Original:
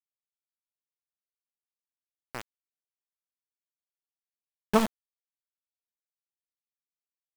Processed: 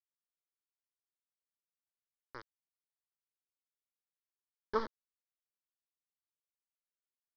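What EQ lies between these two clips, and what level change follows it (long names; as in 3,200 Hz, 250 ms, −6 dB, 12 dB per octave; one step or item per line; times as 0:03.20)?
elliptic low-pass filter 5,100 Hz, stop band 40 dB
phaser with its sweep stopped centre 710 Hz, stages 6
−6.0 dB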